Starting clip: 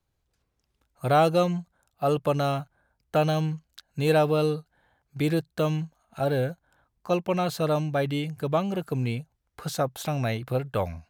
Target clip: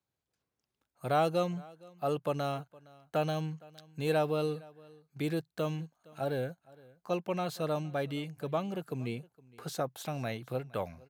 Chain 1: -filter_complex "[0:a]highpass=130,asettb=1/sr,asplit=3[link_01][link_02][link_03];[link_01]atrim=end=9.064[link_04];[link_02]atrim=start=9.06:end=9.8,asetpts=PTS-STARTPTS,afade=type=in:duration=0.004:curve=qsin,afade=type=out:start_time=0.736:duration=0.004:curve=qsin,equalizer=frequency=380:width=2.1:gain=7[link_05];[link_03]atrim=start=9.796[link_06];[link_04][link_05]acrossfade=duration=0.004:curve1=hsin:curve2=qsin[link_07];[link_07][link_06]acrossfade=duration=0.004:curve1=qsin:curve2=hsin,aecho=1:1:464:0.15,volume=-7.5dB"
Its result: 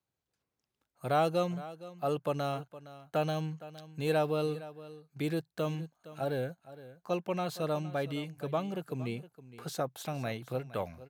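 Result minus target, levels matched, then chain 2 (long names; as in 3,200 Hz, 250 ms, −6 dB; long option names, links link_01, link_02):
echo-to-direct +7 dB
-filter_complex "[0:a]highpass=130,asettb=1/sr,asplit=3[link_01][link_02][link_03];[link_01]atrim=end=9.064[link_04];[link_02]atrim=start=9.06:end=9.8,asetpts=PTS-STARTPTS,afade=type=in:duration=0.004:curve=qsin,afade=type=out:start_time=0.736:duration=0.004:curve=qsin,equalizer=frequency=380:width=2.1:gain=7[link_05];[link_03]atrim=start=9.796[link_06];[link_04][link_05]acrossfade=duration=0.004:curve1=hsin:curve2=qsin[link_07];[link_07][link_06]acrossfade=duration=0.004:curve1=qsin:curve2=hsin,aecho=1:1:464:0.0668,volume=-7.5dB"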